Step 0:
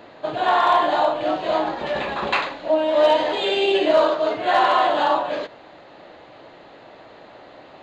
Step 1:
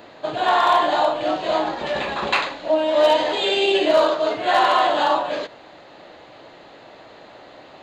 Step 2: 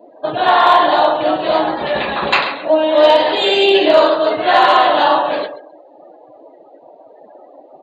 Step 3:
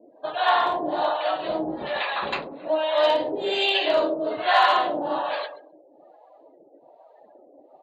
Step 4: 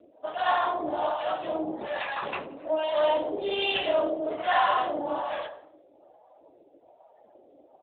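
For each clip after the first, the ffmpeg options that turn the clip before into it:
-af "highshelf=f=5000:g=9.5"
-af "aecho=1:1:134|268|402:0.282|0.0846|0.0254,afftdn=nr=32:nf=-38,asoftclip=type=hard:threshold=0.398,volume=2"
-filter_complex "[0:a]acrossover=split=570[s0][s1];[s0]aeval=exprs='val(0)*(1-1/2+1/2*cos(2*PI*1.2*n/s))':c=same[s2];[s1]aeval=exprs='val(0)*(1-1/2-1/2*cos(2*PI*1.2*n/s))':c=same[s3];[s2][s3]amix=inputs=2:normalize=0,volume=0.562"
-filter_complex "[0:a]asplit=5[s0][s1][s2][s3][s4];[s1]adelay=84,afreqshift=58,volume=0.119[s5];[s2]adelay=168,afreqshift=116,volume=0.0525[s6];[s3]adelay=252,afreqshift=174,volume=0.0229[s7];[s4]adelay=336,afreqshift=232,volume=0.0101[s8];[s0][s5][s6][s7][s8]amix=inputs=5:normalize=0,acontrast=34,volume=0.376" -ar 8000 -c:a libopencore_amrnb -b:a 10200

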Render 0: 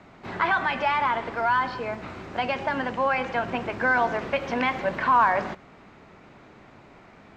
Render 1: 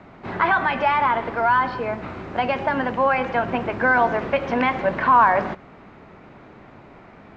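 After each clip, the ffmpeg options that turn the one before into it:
-af "lowpass=f=2100:p=1,volume=1.88"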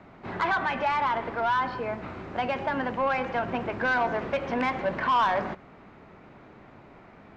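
-af "asoftclip=type=tanh:threshold=0.224,volume=0.562"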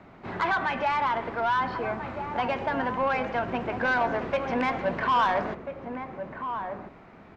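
-filter_complex "[0:a]asplit=2[s0][s1];[s1]adelay=1341,volume=0.447,highshelf=f=4000:g=-30.2[s2];[s0][s2]amix=inputs=2:normalize=0"

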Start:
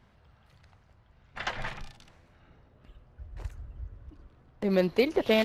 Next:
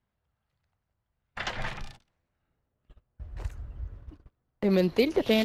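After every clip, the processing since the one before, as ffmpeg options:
-filter_complex "[0:a]agate=range=0.0708:threshold=0.00398:ratio=16:detection=peak,acrossover=split=460|2700[s0][s1][s2];[s1]alimiter=level_in=1.58:limit=0.0631:level=0:latency=1:release=138,volume=0.631[s3];[s0][s3][s2]amix=inputs=3:normalize=0,volume=1.41"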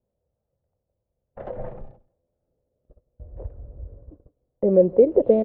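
-af "lowpass=f=530:t=q:w=4.9,aecho=1:1:169:0.0668"

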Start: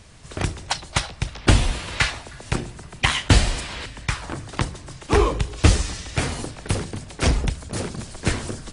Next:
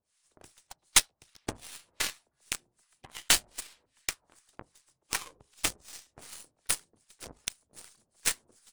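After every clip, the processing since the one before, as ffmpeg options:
-filter_complex "[0:a]aemphasis=mode=production:type=riaa,acrossover=split=890[s0][s1];[s0]aeval=exprs='val(0)*(1-1/2+1/2*cos(2*PI*2.6*n/s))':c=same[s2];[s1]aeval=exprs='val(0)*(1-1/2-1/2*cos(2*PI*2.6*n/s))':c=same[s3];[s2][s3]amix=inputs=2:normalize=0,aeval=exprs='0.75*(cos(1*acos(clip(val(0)/0.75,-1,1)))-cos(1*PI/2))+0.0422*(cos(3*acos(clip(val(0)/0.75,-1,1)))-cos(3*PI/2))+0.0944*(cos(6*acos(clip(val(0)/0.75,-1,1)))-cos(6*PI/2))+0.0841*(cos(7*acos(clip(val(0)/0.75,-1,1)))-cos(7*PI/2))+0.0422*(cos(8*acos(clip(val(0)/0.75,-1,1)))-cos(8*PI/2))':c=same,volume=0.794"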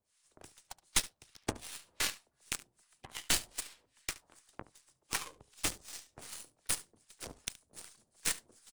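-filter_complex "[0:a]acrossover=split=360[s0][s1];[s1]alimiter=limit=0.188:level=0:latency=1:release=14[s2];[s0][s2]amix=inputs=2:normalize=0,aecho=1:1:72:0.112"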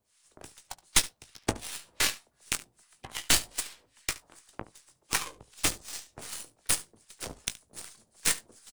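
-filter_complex "[0:a]asplit=2[s0][s1];[s1]adelay=18,volume=0.266[s2];[s0][s2]amix=inputs=2:normalize=0,volume=2.11"

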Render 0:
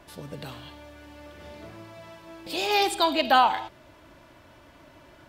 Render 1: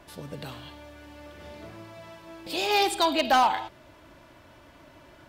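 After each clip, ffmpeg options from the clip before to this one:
-af "asoftclip=type=hard:threshold=0.188"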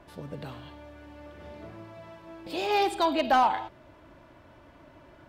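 -af "highshelf=f=2800:g=-11.5"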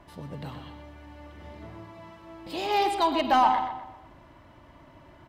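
-filter_complex "[0:a]aecho=1:1:1:0.3,asplit=2[s0][s1];[s1]adelay=125,lowpass=f=3900:p=1,volume=0.398,asplit=2[s2][s3];[s3]adelay=125,lowpass=f=3900:p=1,volume=0.41,asplit=2[s4][s5];[s5]adelay=125,lowpass=f=3900:p=1,volume=0.41,asplit=2[s6][s7];[s7]adelay=125,lowpass=f=3900:p=1,volume=0.41,asplit=2[s8][s9];[s9]adelay=125,lowpass=f=3900:p=1,volume=0.41[s10];[s2][s4][s6][s8][s10]amix=inputs=5:normalize=0[s11];[s0][s11]amix=inputs=2:normalize=0"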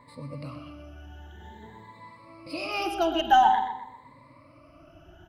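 -af "afftfilt=real='re*pow(10,20/40*sin(2*PI*(0.98*log(max(b,1)*sr/1024/100)/log(2)-(0.49)*(pts-256)/sr)))':imag='im*pow(10,20/40*sin(2*PI*(0.98*log(max(b,1)*sr/1024/100)/log(2)-(0.49)*(pts-256)/sr)))':win_size=1024:overlap=0.75,volume=0.562"

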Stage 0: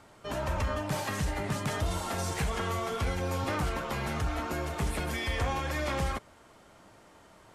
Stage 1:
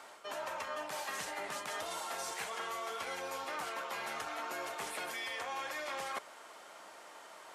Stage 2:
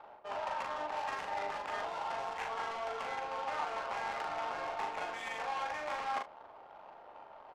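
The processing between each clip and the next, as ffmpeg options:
-af "highpass=600,areverse,acompressor=threshold=0.00631:ratio=6,areverse,volume=2"
-af "highpass=290,equalizer=f=340:t=q:w=4:g=-5,equalizer=f=830:t=q:w=4:g=8,equalizer=f=2700:t=q:w=4:g=4,lowpass=f=6200:w=0.5412,lowpass=f=6200:w=1.3066,adynamicsmooth=sensitivity=7:basefreq=550,aecho=1:1:40|72:0.668|0.178"

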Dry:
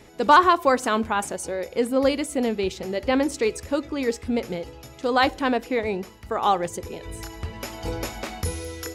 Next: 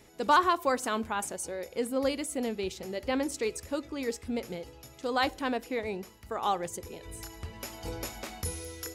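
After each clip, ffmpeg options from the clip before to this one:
-af "highshelf=f=6300:g=8.5,volume=0.376"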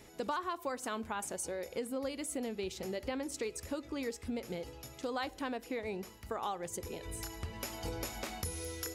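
-af "acompressor=threshold=0.0158:ratio=5,volume=1.12"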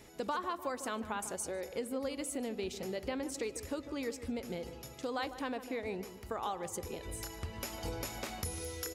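-filter_complex "[0:a]asplit=2[s0][s1];[s1]adelay=150,lowpass=f=1700:p=1,volume=0.266,asplit=2[s2][s3];[s3]adelay=150,lowpass=f=1700:p=1,volume=0.49,asplit=2[s4][s5];[s5]adelay=150,lowpass=f=1700:p=1,volume=0.49,asplit=2[s6][s7];[s7]adelay=150,lowpass=f=1700:p=1,volume=0.49,asplit=2[s8][s9];[s9]adelay=150,lowpass=f=1700:p=1,volume=0.49[s10];[s0][s2][s4][s6][s8][s10]amix=inputs=6:normalize=0"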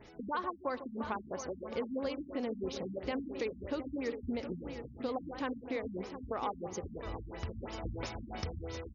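-af "aecho=1:1:715|1430|2145|2860|3575:0.316|0.136|0.0585|0.0251|0.0108,afftfilt=real='re*lt(b*sr/1024,260*pow(7000/260,0.5+0.5*sin(2*PI*3*pts/sr)))':imag='im*lt(b*sr/1024,260*pow(7000/260,0.5+0.5*sin(2*PI*3*pts/sr)))':win_size=1024:overlap=0.75,volume=1.19"

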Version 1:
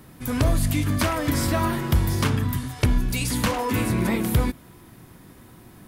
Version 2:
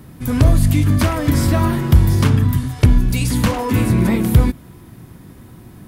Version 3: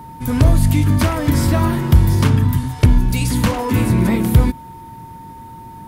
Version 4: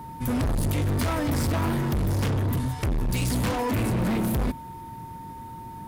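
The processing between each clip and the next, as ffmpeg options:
-af "equalizer=f=88:w=0.3:g=8,volume=1.26"
-af "aeval=exprs='val(0)+0.0178*sin(2*PI*910*n/s)':c=same"
-af "asoftclip=type=hard:threshold=0.112,volume=0.668"

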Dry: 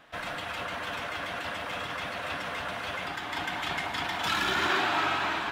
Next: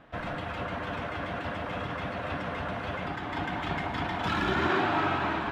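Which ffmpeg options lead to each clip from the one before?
-af "lowpass=f=1700:p=1,lowshelf=f=410:g=10"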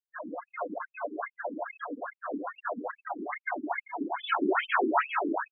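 -af "afftfilt=real='re*gte(hypot(re,im),0.0355)':imag='im*gte(hypot(re,im),0.0355)':win_size=1024:overlap=0.75,afftfilt=real='re*between(b*sr/1024,300*pow(3700/300,0.5+0.5*sin(2*PI*2.4*pts/sr))/1.41,300*pow(3700/300,0.5+0.5*sin(2*PI*2.4*pts/sr))*1.41)':imag='im*between(b*sr/1024,300*pow(3700/300,0.5+0.5*sin(2*PI*2.4*pts/sr))/1.41,300*pow(3700/300,0.5+0.5*sin(2*PI*2.4*pts/sr))*1.41)':win_size=1024:overlap=0.75,volume=2.24"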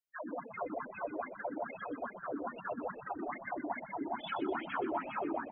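-filter_complex "[0:a]acrossover=split=420|880[s0][s1][s2];[s0]acompressor=threshold=0.0141:ratio=4[s3];[s1]acompressor=threshold=0.0158:ratio=4[s4];[s2]acompressor=threshold=0.00794:ratio=4[s5];[s3][s4][s5]amix=inputs=3:normalize=0,asplit=2[s6][s7];[s7]asplit=5[s8][s9][s10][s11][s12];[s8]adelay=124,afreqshift=-52,volume=0.316[s13];[s9]adelay=248,afreqshift=-104,volume=0.151[s14];[s10]adelay=372,afreqshift=-156,volume=0.0724[s15];[s11]adelay=496,afreqshift=-208,volume=0.0351[s16];[s12]adelay=620,afreqshift=-260,volume=0.0168[s17];[s13][s14][s15][s16][s17]amix=inputs=5:normalize=0[s18];[s6][s18]amix=inputs=2:normalize=0,volume=0.794"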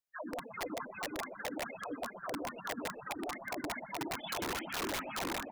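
-af "aeval=exprs='(mod(35.5*val(0)+1,2)-1)/35.5':c=same"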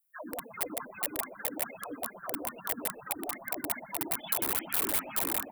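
-af "aexciter=amount=6.8:drive=4.7:freq=8400"

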